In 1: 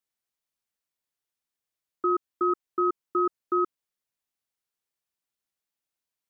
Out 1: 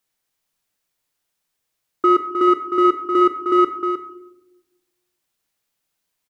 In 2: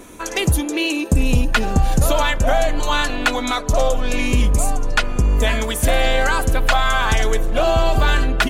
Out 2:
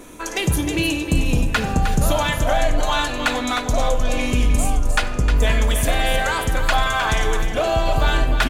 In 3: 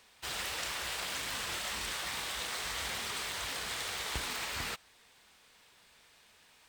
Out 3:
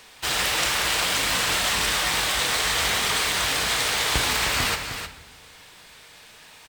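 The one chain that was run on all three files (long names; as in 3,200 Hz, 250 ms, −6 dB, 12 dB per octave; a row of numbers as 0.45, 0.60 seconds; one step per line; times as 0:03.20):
in parallel at −9.5 dB: hard clipping −23 dBFS
on the sum: single-tap delay 309 ms −8.5 dB
rectangular room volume 360 cubic metres, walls mixed, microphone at 0.49 metres
normalise the peak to −6 dBFS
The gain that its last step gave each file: +8.0, −3.5, +10.5 decibels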